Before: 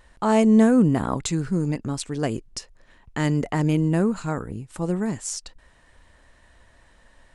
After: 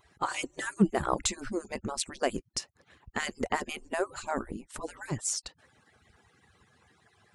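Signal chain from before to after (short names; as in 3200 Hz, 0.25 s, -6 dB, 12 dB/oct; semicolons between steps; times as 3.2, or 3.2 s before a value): median-filter separation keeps percussive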